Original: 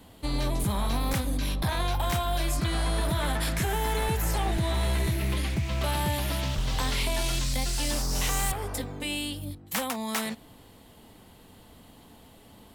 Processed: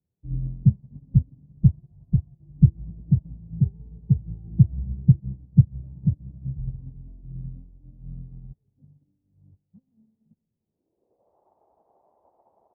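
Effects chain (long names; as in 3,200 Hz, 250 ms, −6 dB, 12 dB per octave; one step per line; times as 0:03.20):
mains-hum notches 50/100 Hz
reverb reduction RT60 1.1 s
high-pass filter 48 Hz 12 dB per octave
tilt shelving filter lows +9.5 dB, about 690 Hz
noise in a band 330–1,000 Hz −38 dBFS
dead-zone distortion −50 dBFS
low-pass filter sweep 150 Hz → 780 Hz, 0:10.50–0:11.37
on a send: single-tap delay 84 ms −22.5 dB
on the sum: comb and all-pass reverb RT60 3.2 s, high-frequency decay 1×, pre-delay 0 ms, DRR 9.5 dB
expander for the loud parts 2.5 to 1, over −38 dBFS
level +4 dB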